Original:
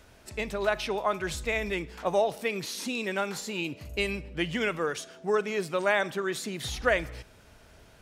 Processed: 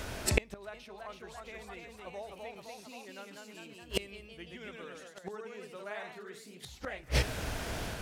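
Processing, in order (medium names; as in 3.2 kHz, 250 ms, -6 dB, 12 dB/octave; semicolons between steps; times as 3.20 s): ever faster or slower copies 374 ms, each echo +1 st, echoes 3; inverted gate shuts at -24 dBFS, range -34 dB; trim +15 dB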